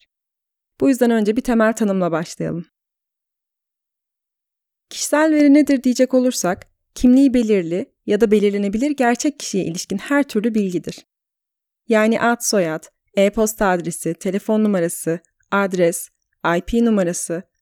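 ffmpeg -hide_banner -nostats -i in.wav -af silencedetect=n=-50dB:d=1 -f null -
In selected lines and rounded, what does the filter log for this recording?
silence_start: 2.67
silence_end: 4.91 | silence_duration: 2.24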